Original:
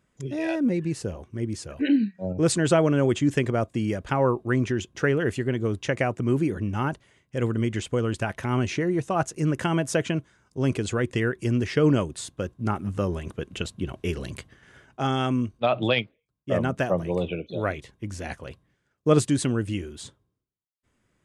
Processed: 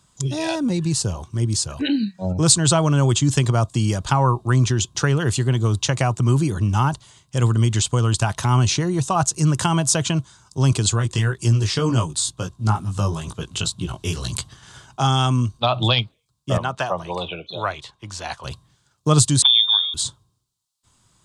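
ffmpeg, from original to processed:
-filter_complex "[0:a]asplit=3[s0][s1][s2];[s0]afade=t=out:st=10.93:d=0.02[s3];[s1]flanger=delay=17:depth=2.2:speed=2.1,afade=t=in:st=10.93:d=0.02,afade=t=out:st=14.32:d=0.02[s4];[s2]afade=t=in:st=14.32:d=0.02[s5];[s3][s4][s5]amix=inputs=3:normalize=0,asettb=1/sr,asplit=3[s6][s7][s8];[s6]atrim=end=16.574[s9];[s7]atrim=start=16.57:end=18.44,asetpts=PTS-STARTPTS,afade=t=in:d=0.004:c=qsin,afade=t=out:st=1.866:d=0.004:c=qsin,acrossover=split=440 4200:gain=0.224 1 0.2[s10][s11][s12];[s10][s11][s12]amix=inputs=3:normalize=0[s13];[s8]atrim=start=18.436[s14];[s9][s13]acrossfade=d=0.004:c1=hsin:c2=qsin[s15];[s15][s14]acrossfade=d=0.004:c1=qsin:c2=hsin,asettb=1/sr,asplit=3[s16][s17][s18];[s16]atrim=end=19.424[s19];[s17]atrim=start=19.42:end=19.94,asetpts=PTS-STARTPTS,afade=t=in:d=0.004:c=qsin,afade=t=out:st=0.516:d=0.004:c=qsin,lowpass=f=3100:t=q:w=0.5098,lowpass=f=3100:t=q:w=0.6013,lowpass=f=3100:t=q:w=0.9,lowpass=f=3100:t=q:w=2.563,afreqshift=-3700[s20];[s18]atrim=start=19.936[s21];[s19][s20]acrossfade=d=0.004:c1=hsin:c2=qsin[s22];[s22][s21]acrossfade=d=0.004:c1=qsin:c2=hsin,equalizer=f=125:t=o:w=1:g=5,equalizer=f=250:t=o:w=1:g=-5,equalizer=f=500:t=o:w=1:g=-8,equalizer=f=1000:t=o:w=1:g=9,equalizer=f=2000:t=o:w=1:g=-11,equalizer=f=4000:t=o:w=1:g=11,equalizer=f=8000:t=o:w=1:g=11,acrossover=split=140[s23][s24];[s24]acompressor=threshold=0.0282:ratio=1.5[s25];[s23][s25]amix=inputs=2:normalize=0,volume=2.51"

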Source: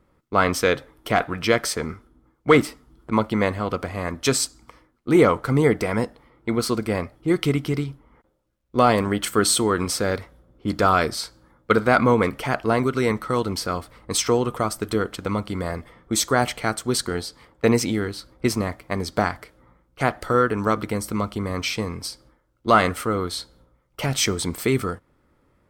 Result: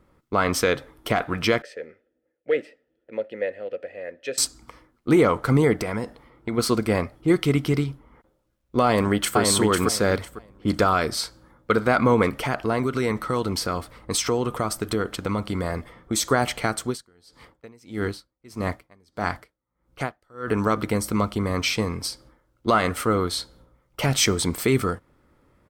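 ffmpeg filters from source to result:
-filter_complex "[0:a]asettb=1/sr,asplit=3[s0][s1][s2];[s0]atrim=end=1.624[s3];[s1]atrim=start=1.62:end=4.38,asetpts=PTS-STARTPTS,afade=t=in:d=0.004:c=qsin,afade=t=out:st=2.756:d=0.004:c=qsin,asplit=3[s4][s5][s6];[s4]bandpass=f=530:t=q:w=8,volume=1[s7];[s5]bandpass=f=1840:t=q:w=8,volume=0.501[s8];[s6]bandpass=f=2480:t=q:w=8,volume=0.355[s9];[s7][s8][s9]amix=inputs=3:normalize=0[s10];[s2]atrim=start=4.376[s11];[s3][s10]acrossfade=d=0.004:c1=hsin:c2=qsin[s12];[s12][s11]acrossfade=d=0.004:c1=qsin:c2=hsin,asplit=3[s13][s14][s15];[s13]afade=t=out:st=5.76:d=0.02[s16];[s14]acompressor=threshold=0.0562:ratio=5:attack=3.2:release=140:knee=1:detection=peak,afade=t=in:st=5.76:d=0.02,afade=t=out:st=6.57:d=0.02[s17];[s15]afade=t=in:st=6.57:d=0.02[s18];[s16][s17][s18]amix=inputs=3:normalize=0,asplit=2[s19][s20];[s20]afade=t=in:st=8.85:d=0.01,afade=t=out:st=9.38:d=0.01,aecho=0:1:500|1000|1500:0.794328|0.119149|0.0178724[s21];[s19][s21]amix=inputs=2:normalize=0,asettb=1/sr,asplit=3[s22][s23][s24];[s22]atrim=end=12.424[s25];[s23]atrim=start=12.42:end=16.27,asetpts=PTS-STARTPTS,afade=t=in:d=0.004:c=qsin,afade=t=out:st=3.846:d=0.004:c=qsin,acompressor=threshold=0.0631:ratio=2:attack=3.2:release=140:knee=1:detection=peak[s26];[s24]atrim=start=16.266[s27];[s25][s26]acrossfade=d=0.004:c1=hsin:c2=qsin[s28];[s28][s27]acrossfade=d=0.004:c1=qsin:c2=hsin,asettb=1/sr,asplit=3[s29][s30][s31];[s29]atrim=end=16.824[s32];[s30]atrim=start=16.82:end=20.48,asetpts=PTS-STARTPTS,afade=t=in:d=0.004:c=qsin,afade=t=out:st=3.656:d=0.004:c=qsin,aeval=exprs='val(0)*pow(10,-35*(0.5-0.5*cos(2*PI*1.6*n/s))/20)':c=same[s33];[s31]atrim=start=20.476[s34];[s32][s33]acrossfade=d=0.004:c1=hsin:c2=qsin[s35];[s35][s34]acrossfade=d=0.004:c1=qsin:c2=hsin,alimiter=limit=0.299:level=0:latency=1:release=157,volume=1.26"

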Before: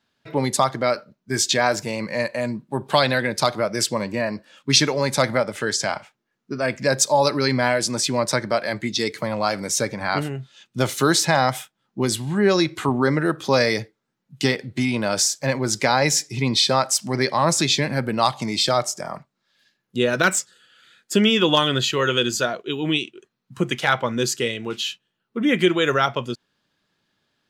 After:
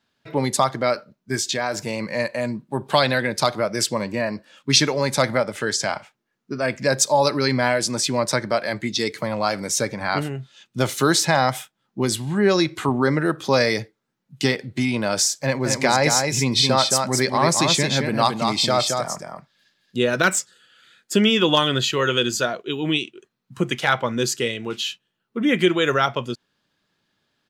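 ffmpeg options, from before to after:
-filter_complex "[0:a]asettb=1/sr,asplit=3[s0][s1][s2];[s0]atrim=end=1.354[s3];[s1]atrim=start=1.35:end=1.84,asetpts=PTS-STARTPTS,afade=t=in:d=0.004:c=qsin,afade=t=out:st=0.486:d=0.004:c=qsin,acompressor=threshold=0.0708:ratio=2:attack=3.2:release=140:knee=1:detection=peak[s4];[s2]atrim=start=1.836[s5];[s3][s4]acrossfade=d=0.004:c1=hsin:c2=qsin[s6];[s6][s5]acrossfade=d=0.004:c1=qsin:c2=hsin,asplit=3[s7][s8][s9];[s7]afade=t=out:st=15.6:d=0.02[s10];[s8]aecho=1:1:221:0.596,afade=t=in:st=15.6:d=0.02,afade=t=out:st=20.12:d=0.02[s11];[s9]afade=t=in:st=20.12:d=0.02[s12];[s10][s11][s12]amix=inputs=3:normalize=0"

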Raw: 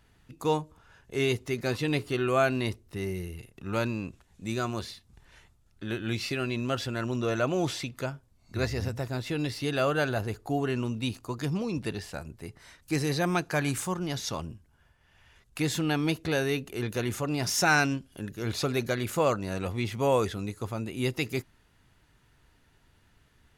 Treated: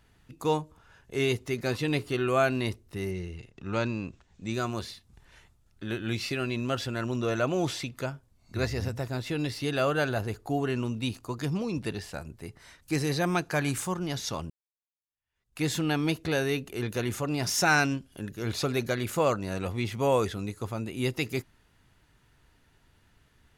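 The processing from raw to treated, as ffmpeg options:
-filter_complex "[0:a]asettb=1/sr,asplit=3[s0][s1][s2];[s0]atrim=end=3.114[s3];[s1]atrim=start=3.11:end=4.54,asetpts=PTS-STARTPTS,afade=t=in:d=0.004:c=qsin,afade=t=out:st=1.426:d=0.004:c=qsin,lowpass=f=7100:w=0.5412,lowpass=f=7100:w=1.3066[s4];[s2]atrim=start=4.536[s5];[s3][s4]acrossfade=d=0.004:c1=hsin:c2=qsin[s6];[s6][s5]acrossfade=d=0.004:c1=qsin:c2=hsin,asplit=2[s7][s8];[s7]atrim=end=14.5,asetpts=PTS-STARTPTS,afade=t=out:st=14.496:d=0.004:c=hsin[s9];[s8]atrim=start=14.5,asetpts=PTS-STARTPTS,afade=t=in:d=1.13:c=exp[s10];[s9][s10]concat=n=2:v=0:a=1"

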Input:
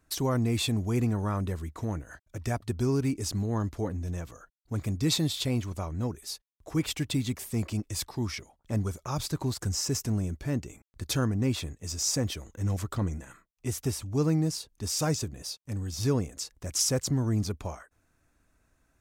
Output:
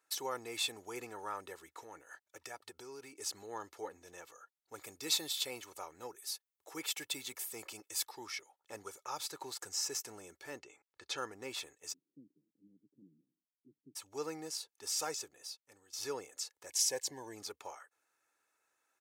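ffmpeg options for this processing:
-filter_complex "[0:a]asettb=1/sr,asplit=3[s0][s1][s2];[s0]atrim=end=1.664[s3];[s1]atrim=start=1.66:end=3.2,asetpts=PTS-STARTPTS,afade=t=in:d=0.004:c=qsin,afade=t=out:st=1.536:d=0.004:c=qsin,acompressor=threshold=0.0316:ratio=6:attack=3.2:release=140:knee=1:detection=peak[s4];[s2]atrim=start=3.196[s5];[s3][s4]acrossfade=d=0.004:c1=hsin:c2=qsin[s6];[s6][s5]acrossfade=d=0.004:c1=qsin:c2=hsin,asettb=1/sr,asplit=3[s7][s8][s9];[s7]atrim=end=4.744[s10];[s8]atrim=start=4.74:end=8.12,asetpts=PTS-STARTPTS,afade=t=in:d=0.004:c=qsin,afade=t=out:st=3.376:d=0.004:c=qsin,highshelf=f=11000:g=9[s11];[s9]atrim=start=8.116[s12];[s10][s11]acrossfade=d=0.004:c1=hsin:c2=qsin[s13];[s13][s12]acrossfade=d=0.004:c1=qsin:c2=hsin,asettb=1/sr,asplit=3[s14][s15][s16];[s14]atrim=end=10.594[s17];[s15]atrim=start=10.59:end=11.18,asetpts=PTS-STARTPTS,afade=t=in:d=0.004:c=qsin,afade=t=out:st=0.586:d=0.004:c=qsin,lowpass=5000[s18];[s16]atrim=start=11.176[s19];[s17][s18]acrossfade=d=0.004:c1=hsin:c2=qsin[s20];[s20][s19]acrossfade=d=0.004:c1=qsin:c2=hsin,asplit=3[s21][s22][s23];[s21]afade=t=out:st=11.92:d=0.02[s24];[s22]asuperpass=centerf=200:order=8:qfactor=1.3,afade=t=in:st=11.92:d=0.02,afade=t=out:st=13.95:d=0.02[s25];[s23]afade=t=in:st=13.95:d=0.02[s26];[s24][s25][s26]amix=inputs=3:normalize=0,asettb=1/sr,asplit=3[s27][s28][s29];[s27]atrim=end=16.684[s30];[s28]atrim=start=16.68:end=17.36,asetpts=PTS-STARTPTS,afade=t=in:d=0.004:c=qsin,afade=t=out:st=0.676:d=0.004:c=qsin,asuperstop=centerf=1300:order=8:qfactor=3.6[s31];[s29]atrim=start=17.356[s32];[s30][s31]acrossfade=d=0.004:c1=hsin:c2=qsin[s33];[s33][s32]acrossfade=d=0.004:c1=qsin:c2=hsin,asplit=2[s34][s35];[s34]atrim=end=15.93,asetpts=PTS-STARTPTS,afade=t=out:st=15.02:d=0.91:silence=0.211349[s36];[s35]atrim=start=15.93,asetpts=PTS-STARTPTS,afade=t=in:d=0.004:c=hsin:silence=0.211349[s37];[s36][s37]concat=n=2:v=0:a=1,highpass=630,aecho=1:1:2.3:0.5,volume=0.531"

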